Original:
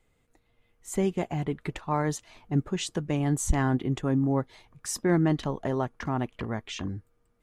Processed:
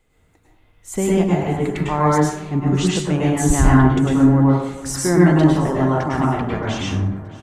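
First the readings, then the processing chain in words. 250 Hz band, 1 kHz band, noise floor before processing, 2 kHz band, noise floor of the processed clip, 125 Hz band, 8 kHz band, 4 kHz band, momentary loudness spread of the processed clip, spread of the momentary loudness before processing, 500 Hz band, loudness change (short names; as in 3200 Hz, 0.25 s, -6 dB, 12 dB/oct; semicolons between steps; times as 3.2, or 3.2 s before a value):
+12.0 dB, +12.0 dB, -70 dBFS, +11.0 dB, -58 dBFS, +12.0 dB, +9.0 dB, +9.0 dB, 10 LU, 10 LU, +10.5 dB, +11.5 dB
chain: on a send: feedback echo 0.622 s, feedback 51%, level -19.5 dB; on the sum: plate-style reverb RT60 0.88 s, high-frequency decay 0.45×, pre-delay 90 ms, DRR -5.5 dB; gain +4.5 dB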